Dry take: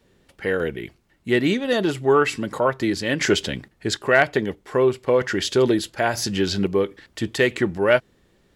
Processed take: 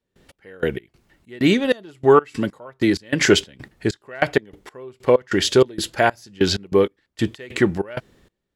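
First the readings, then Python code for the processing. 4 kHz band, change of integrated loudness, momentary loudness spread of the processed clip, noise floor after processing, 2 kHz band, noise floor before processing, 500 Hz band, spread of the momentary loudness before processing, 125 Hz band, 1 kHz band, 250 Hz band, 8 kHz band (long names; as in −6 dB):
+2.0 dB, +1.0 dB, 11 LU, −79 dBFS, −2.0 dB, −62 dBFS, +0.5 dB, 10 LU, +1.0 dB, +0.5 dB, +1.5 dB, +1.0 dB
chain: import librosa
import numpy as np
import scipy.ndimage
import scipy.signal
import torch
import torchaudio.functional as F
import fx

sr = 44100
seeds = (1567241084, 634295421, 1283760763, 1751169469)

y = fx.step_gate(x, sr, bpm=96, pattern='.x..x.xx.xx..x', floor_db=-24.0, edge_ms=4.5)
y = y * 10.0 ** (4.5 / 20.0)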